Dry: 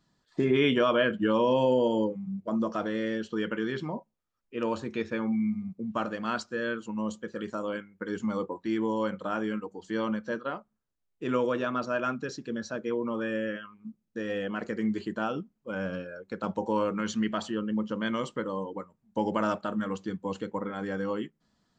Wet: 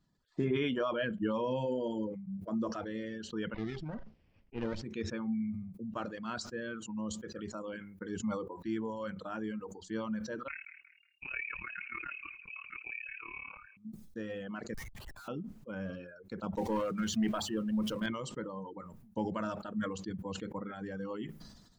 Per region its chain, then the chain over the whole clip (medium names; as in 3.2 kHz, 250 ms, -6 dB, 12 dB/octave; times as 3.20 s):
3.54–4.84 s: comb filter that takes the minimum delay 0.38 ms + low-pass 5.9 kHz 24 dB/octave + level-controlled noise filter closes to 2.5 kHz, open at -26.5 dBFS
10.48–13.77 s: AM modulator 36 Hz, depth 70% + feedback echo behind a band-pass 183 ms, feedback 39%, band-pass 460 Hz, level -10 dB + frequency inversion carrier 2.8 kHz
14.74–15.28 s: high-pass 1.1 kHz 24 dB/octave + Schmitt trigger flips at -48.5 dBFS
16.57–18.06 s: jump at every zero crossing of -43.5 dBFS + hum notches 50/100/150/200/250/300/350/400 Hz + waveshaping leveller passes 1
whole clip: reverb removal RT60 1.3 s; bass shelf 200 Hz +10 dB; decay stretcher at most 53 dB/s; trim -9 dB